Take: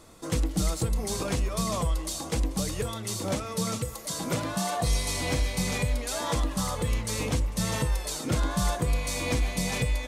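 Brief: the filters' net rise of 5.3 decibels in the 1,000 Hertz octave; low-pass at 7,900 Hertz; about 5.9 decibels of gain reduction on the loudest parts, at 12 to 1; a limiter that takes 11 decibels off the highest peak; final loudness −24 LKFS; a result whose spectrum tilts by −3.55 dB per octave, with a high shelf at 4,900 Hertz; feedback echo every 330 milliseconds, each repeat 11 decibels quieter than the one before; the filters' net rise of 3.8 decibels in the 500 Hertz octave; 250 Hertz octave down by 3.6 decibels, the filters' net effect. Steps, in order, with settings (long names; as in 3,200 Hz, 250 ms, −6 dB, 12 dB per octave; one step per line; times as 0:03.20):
low-pass filter 7,900 Hz
parametric band 250 Hz −7 dB
parametric band 500 Hz +4.5 dB
parametric band 1,000 Hz +5.5 dB
high-shelf EQ 4,900 Hz +4.5 dB
downward compressor 12 to 1, threshold −27 dBFS
brickwall limiter −27.5 dBFS
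repeating echo 330 ms, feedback 28%, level −11 dB
level +12 dB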